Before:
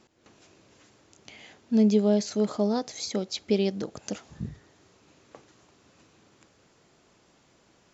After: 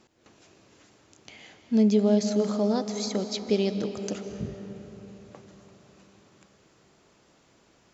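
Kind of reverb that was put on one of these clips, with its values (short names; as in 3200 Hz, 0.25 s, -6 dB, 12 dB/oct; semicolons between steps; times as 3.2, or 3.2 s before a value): digital reverb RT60 4.3 s, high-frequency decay 0.55×, pre-delay 0.12 s, DRR 8 dB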